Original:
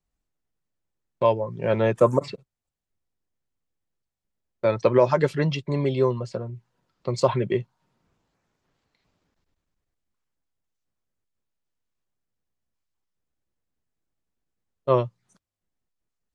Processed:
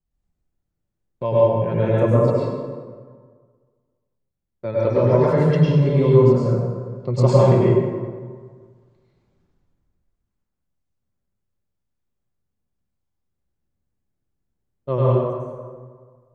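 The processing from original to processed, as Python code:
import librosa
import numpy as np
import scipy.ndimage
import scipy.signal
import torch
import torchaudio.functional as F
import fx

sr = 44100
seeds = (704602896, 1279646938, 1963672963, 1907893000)

y = fx.rider(x, sr, range_db=10, speed_s=2.0)
y = fx.low_shelf(y, sr, hz=420.0, db=11.5)
y = fx.rev_plate(y, sr, seeds[0], rt60_s=1.7, hf_ratio=0.55, predelay_ms=90, drr_db=-7.5)
y = y * 10.0 ** (-9.0 / 20.0)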